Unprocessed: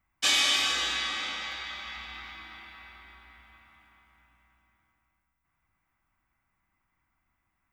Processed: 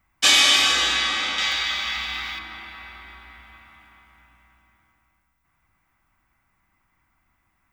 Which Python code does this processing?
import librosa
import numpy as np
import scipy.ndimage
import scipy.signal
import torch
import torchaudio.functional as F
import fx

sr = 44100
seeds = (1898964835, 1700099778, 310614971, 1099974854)

y = fx.high_shelf(x, sr, hz=2500.0, db=9.5, at=(1.38, 2.39))
y = F.gain(torch.from_numpy(y), 8.5).numpy()